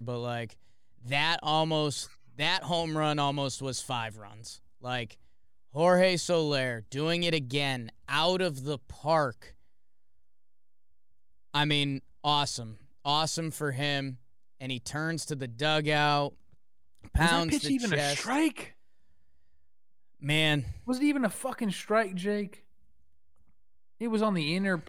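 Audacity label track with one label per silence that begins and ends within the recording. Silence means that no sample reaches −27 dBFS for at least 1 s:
9.290000	11.550000	silence
18.610000	20.270000	silence
22.430000	24.020000	silence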